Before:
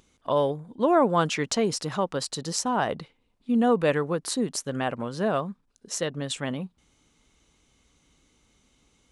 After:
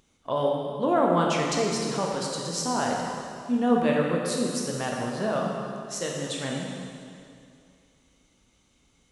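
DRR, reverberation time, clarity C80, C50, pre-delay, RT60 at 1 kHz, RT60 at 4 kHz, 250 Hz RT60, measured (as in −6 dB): −2.0 dB, 2.4 s, 1.5 dB, 0.5 dB, 7 ms, 2.4 s, 2.3 s, 2.4 s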